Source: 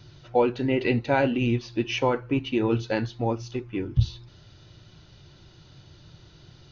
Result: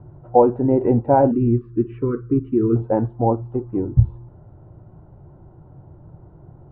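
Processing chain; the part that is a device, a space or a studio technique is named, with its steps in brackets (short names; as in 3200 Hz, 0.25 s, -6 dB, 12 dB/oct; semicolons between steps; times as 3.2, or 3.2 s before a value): 1.31–2.76 elliptic band-stop 420–1200 Hz, stop band 40 dB; under water (LPF 970 Hz 24 dB/oct; bell 780 Hz +4 dB 0.55 oct); gain +7 dB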